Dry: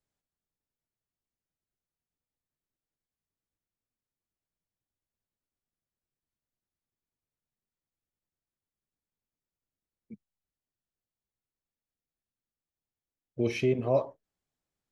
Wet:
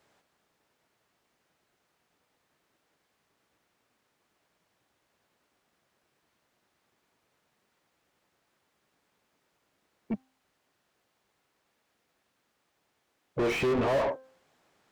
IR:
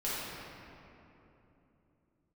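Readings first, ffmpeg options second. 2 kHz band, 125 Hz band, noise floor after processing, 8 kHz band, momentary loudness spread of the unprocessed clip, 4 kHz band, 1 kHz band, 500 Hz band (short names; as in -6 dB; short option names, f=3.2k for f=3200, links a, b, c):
+6.5 dB, -3.5 dB, -77 dBFS, n/a, 17 LU, +4.5 dB, +6.5 dB, +1.0 dB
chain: -filter_complex "[0:a]asplit=2[a][b];[b]highpass=f=720:p=1,volume=40dB,asoftclip=type=tanh:threshold=-15dB[c];[a][c]amix=inputs=2:normalize=0,lowpass=f=1.4k:p=1,volume=-6dB,bandreject=f=261.6:t=h:w=4,bandreject=f=523.2:t=h:w=4,bandreject=f=784.8:t=h:w=4,bandreject=f=1.0464k:t=h:w=4,bandreject=f=1.308k:t=h:w=4,bandreject=f=1.5696k:t=h:w=4,volume=-4.5dB"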